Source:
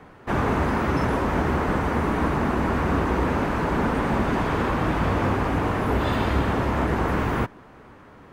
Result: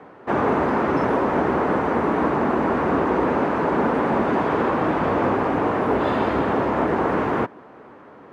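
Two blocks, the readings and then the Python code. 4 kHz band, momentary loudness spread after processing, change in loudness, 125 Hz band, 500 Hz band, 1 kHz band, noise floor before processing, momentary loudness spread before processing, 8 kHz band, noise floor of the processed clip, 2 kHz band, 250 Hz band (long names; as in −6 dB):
−3.0 dB, 1 LU, +2.5 dB, −5.5 dB, +5.5 dB, +4.0 dB, −48 dBFS, 1 LU, can't be measured, −45 dBFS, +0.5 dB, +2.5 dB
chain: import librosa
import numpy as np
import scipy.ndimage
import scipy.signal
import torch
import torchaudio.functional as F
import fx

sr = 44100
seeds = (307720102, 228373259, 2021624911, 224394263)

y = fx.bandpass_q(x, sr, hz=420.0, q=0.67)
y = fx.tilt_eq(y, sr, slope=2.0)
y = y * 10.0 ** (8.0 / 20.0)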